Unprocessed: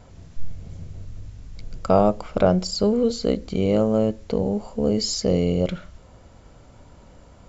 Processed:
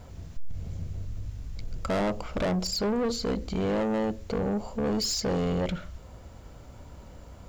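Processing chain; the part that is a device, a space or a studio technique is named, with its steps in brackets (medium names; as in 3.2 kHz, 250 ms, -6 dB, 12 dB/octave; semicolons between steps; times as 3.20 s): open-reel tape (saturation -24 dBFS, distortion -6 dB; peaking EQ 66 Hz +5 dB 0.89 oct; white noise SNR 43 dB)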